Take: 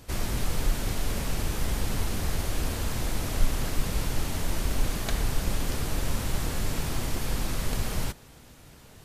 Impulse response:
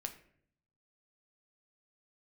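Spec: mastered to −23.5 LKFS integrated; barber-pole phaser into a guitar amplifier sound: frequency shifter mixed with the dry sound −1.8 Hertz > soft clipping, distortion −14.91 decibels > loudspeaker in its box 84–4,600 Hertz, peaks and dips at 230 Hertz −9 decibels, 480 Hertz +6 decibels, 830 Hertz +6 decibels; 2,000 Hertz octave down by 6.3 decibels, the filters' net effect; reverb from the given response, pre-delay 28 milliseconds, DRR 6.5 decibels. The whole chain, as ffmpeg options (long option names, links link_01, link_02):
-filter_complex "[0:a]equalizer=frequency=2000:width_type=o:gain=-8.5,asplit=2[link_01][link_02];[1:a]atrim=start_sample=2205,adelay=28[link_03];[link_02][link_03]afir=irnorm=-1:irlink=0,volume=-4.5dB[link_04];[link_01][link_04]amix=inputs=2:normalize=0,asplit=2[link_05][link_06];[link_06]afreqshift=-1.8[link_07];[link_05][link_07]amix=inputs=2:normalize=1,asoftclip=threshold=-22.5dB,highpass=84,equalizer=frequency=230:width_type=q:width=4:gain=-9,equalizer=frequency=480:width_type=q:width=4:gain=6,equalizer=frequency=830:width_type=q:width=4:gain=6,lowpass=frequency=4600:width=0.5412,lowpass=frequency=4600:width=1.3066,volume=15.5dB"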